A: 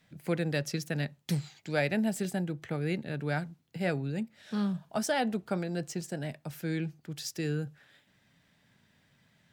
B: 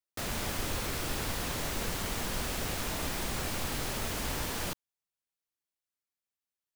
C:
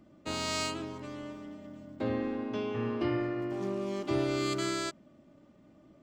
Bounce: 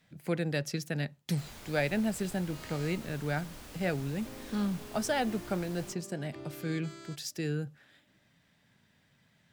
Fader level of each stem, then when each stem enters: -1.0 dB, -14.5 dB, -16.0 dB; 0.00 s, 1.20 s, 2.25 s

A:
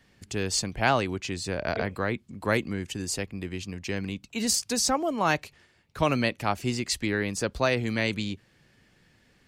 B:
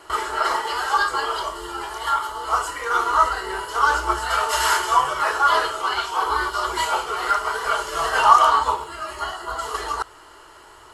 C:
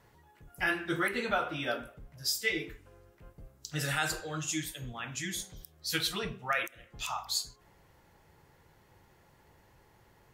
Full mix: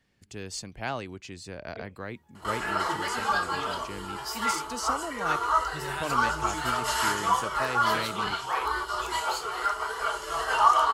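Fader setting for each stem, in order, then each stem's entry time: -9.5 dB, -7.0 dB, -5.5 dB; 0.00 s, 2.35 s, 2.00 s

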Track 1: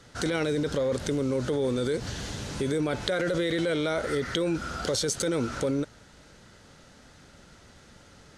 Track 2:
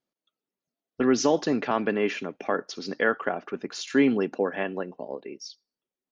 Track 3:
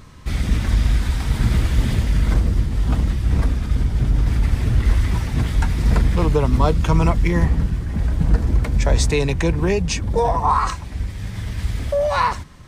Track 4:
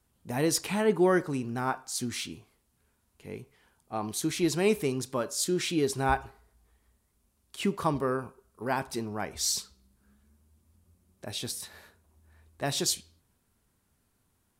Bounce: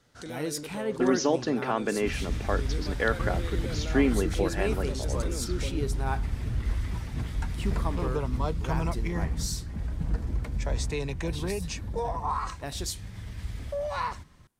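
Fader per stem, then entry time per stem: -12.5 dB, -3.0 dB, -12.5 dB, -6.5 dB; 0.00 s, 0.00 s, 1.80 s, 0.00 s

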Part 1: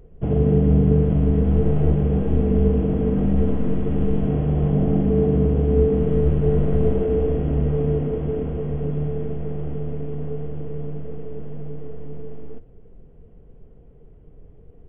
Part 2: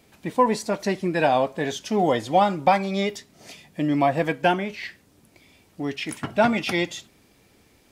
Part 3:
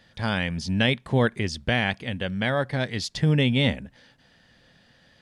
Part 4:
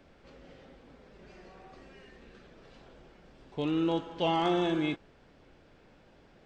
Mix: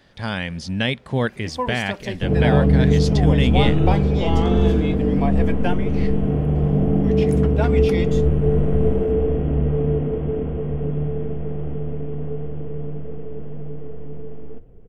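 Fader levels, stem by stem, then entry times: +1.0 dB, -6.5 dB, 0.0 dB, +1.5 dB; 2.00 s, 1.20 s, 0.00 s, 0.00 s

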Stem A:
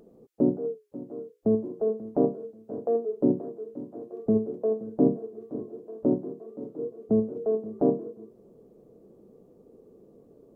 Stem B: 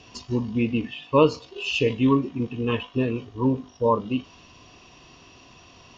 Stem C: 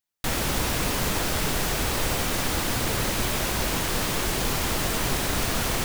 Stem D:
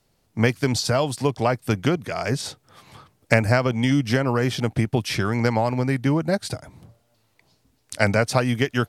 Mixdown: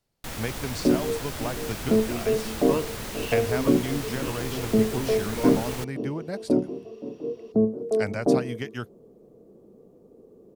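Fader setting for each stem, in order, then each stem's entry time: +2.0 dB, -12.0 dB, -9.5 dB, -11.5 dB; 0.45 s, 1.55 s, 0.00 s, 0.00 s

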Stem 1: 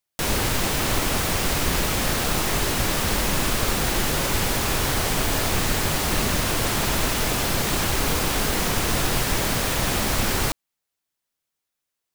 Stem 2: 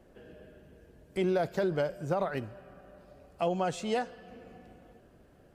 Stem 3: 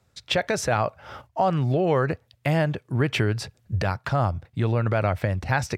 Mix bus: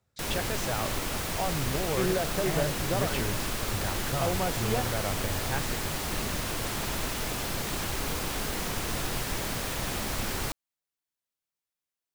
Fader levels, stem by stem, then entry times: -9.0 dB, -1.0 dB, -10.5 dB; 0.00 s, 0.80 s, 0.00 s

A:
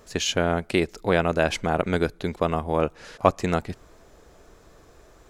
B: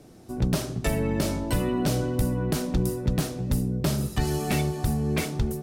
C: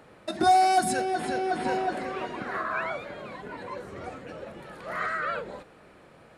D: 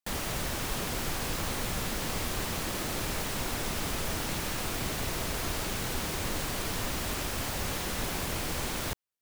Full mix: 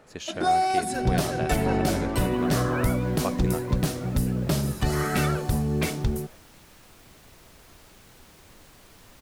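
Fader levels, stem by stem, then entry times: -11.5 dB, +0.5 dB, -2.5 dB, -19.0 dB; 0.00 s, 0.65 s, 0.00 s, 2.25 s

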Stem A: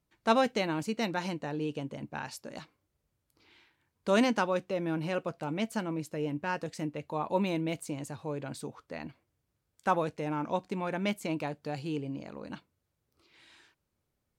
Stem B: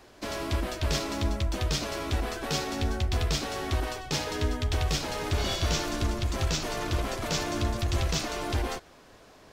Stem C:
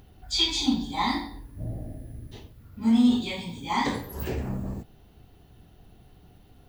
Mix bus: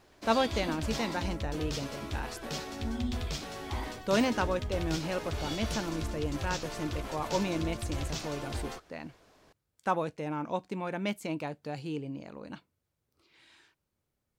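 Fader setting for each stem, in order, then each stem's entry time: -1.5 dB, -8.0 dB, -16.5 dB; 0.00 s, 0.00 s, 0.00 s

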